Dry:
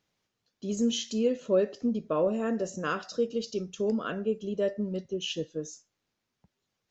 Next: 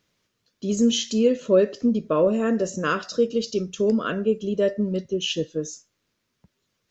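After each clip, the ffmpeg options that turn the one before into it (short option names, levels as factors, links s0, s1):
-af "equalizer=f=790:t=o:w=0.29:g=-9.5,volume=2.37"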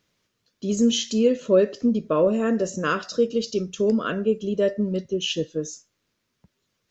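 -af anull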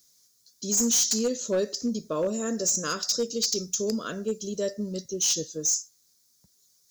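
-af "aexciter=amount=7.4:drive=9.5:freq=4300,volume=4.22,asoftclip=hard,volume=0.237,volume=0.422"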